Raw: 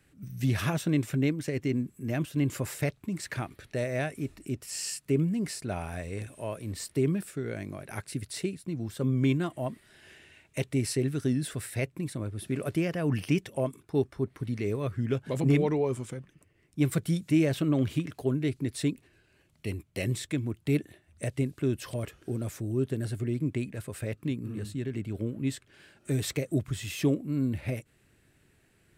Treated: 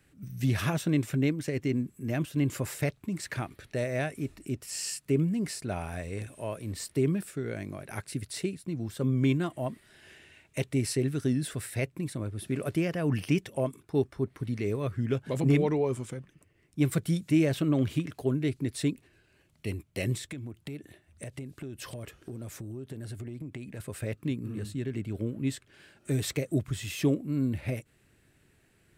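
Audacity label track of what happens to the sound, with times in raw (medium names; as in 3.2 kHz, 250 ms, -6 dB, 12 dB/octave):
20.170000	23.800000	compression 12:1, threshold -35 dBFS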